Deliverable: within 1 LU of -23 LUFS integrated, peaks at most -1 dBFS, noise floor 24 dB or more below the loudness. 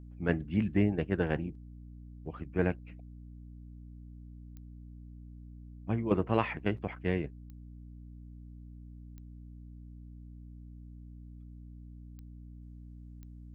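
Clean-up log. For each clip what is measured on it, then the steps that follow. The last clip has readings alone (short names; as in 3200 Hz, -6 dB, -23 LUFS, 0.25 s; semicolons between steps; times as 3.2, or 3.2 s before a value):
clicks 5; hum 60 Hz; harmonics up to 300 Hz; hum level -46 dBFS; loudness -32.5 LUFS; peak -12.0 dBFS; loudness target -23.0 LUFS
-> de-click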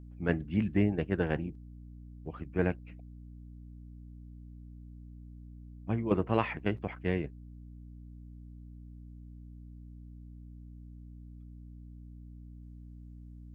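clicks 0; hum 60 Hz; harmonics up to 300 Hz; hum level -46 dBFS
-> notches 60/120/180/240/300 Hz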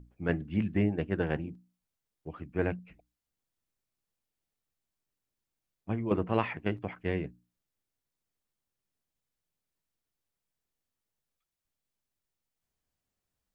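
hum none; loudness -32.5 LUFS; peak -12.0 dBFS; loudness target -23.0 LUFS
-> gain +9.5 dB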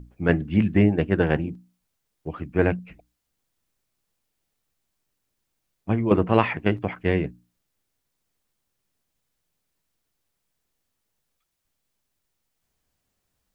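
loudness -23.5 LUFS; peak -2.5 dBFS; noise floor -78 dBFS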